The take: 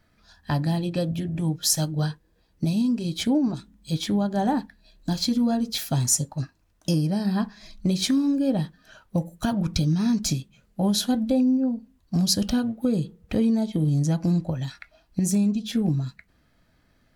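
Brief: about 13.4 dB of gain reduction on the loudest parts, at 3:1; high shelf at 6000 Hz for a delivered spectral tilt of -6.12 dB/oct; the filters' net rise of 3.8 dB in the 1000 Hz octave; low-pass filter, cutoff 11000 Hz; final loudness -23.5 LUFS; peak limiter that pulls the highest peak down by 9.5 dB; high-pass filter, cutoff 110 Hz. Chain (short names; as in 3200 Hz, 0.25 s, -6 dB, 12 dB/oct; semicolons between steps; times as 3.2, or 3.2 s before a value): HPF 110 Hz; LPF 11000 Hz; bell 1000 Hz +5.5 dB; high shelf 6000 Hz -8 dB; compressor 3:1, threshold -37 dBFS; gain +14.5 dB; limiter -14.5 dBFS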